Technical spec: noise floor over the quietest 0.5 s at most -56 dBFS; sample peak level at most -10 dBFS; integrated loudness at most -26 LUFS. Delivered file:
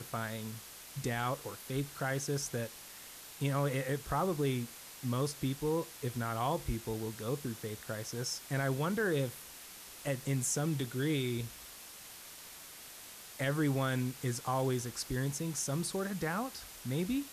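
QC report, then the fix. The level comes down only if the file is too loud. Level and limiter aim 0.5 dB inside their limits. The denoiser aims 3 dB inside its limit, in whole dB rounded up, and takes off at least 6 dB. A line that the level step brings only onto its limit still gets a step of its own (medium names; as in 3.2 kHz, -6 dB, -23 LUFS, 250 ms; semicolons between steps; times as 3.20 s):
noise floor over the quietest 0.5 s -51 dBFS: fail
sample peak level -21.0 dBFS: pass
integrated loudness -35.5 LUFS: pass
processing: noise reduction 8 dB, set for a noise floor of -51 dBFS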